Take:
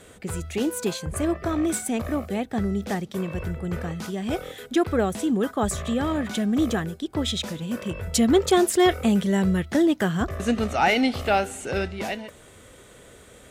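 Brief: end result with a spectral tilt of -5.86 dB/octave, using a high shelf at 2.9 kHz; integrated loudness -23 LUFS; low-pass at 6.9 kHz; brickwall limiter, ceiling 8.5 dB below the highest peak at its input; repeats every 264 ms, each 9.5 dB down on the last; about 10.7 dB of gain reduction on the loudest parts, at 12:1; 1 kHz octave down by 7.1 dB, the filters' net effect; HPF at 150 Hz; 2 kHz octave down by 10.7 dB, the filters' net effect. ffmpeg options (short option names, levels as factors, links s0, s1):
-af "highpass=150,lowpass=6900,equalizer=f=1000:t=o:g=-8.5,equalizer=f=2000:t=o:g=-8.5,highshelf=f=2900:g=-6,acompressor=threshold=0.0447:ratio=12,alimiter=level_in=1.33:limit=0.0631:level=0:latency=1,volume=0.75,aecho=1:1:264|528|792|1056:0.335|0.111|0.0365|0.012,volume=3.98"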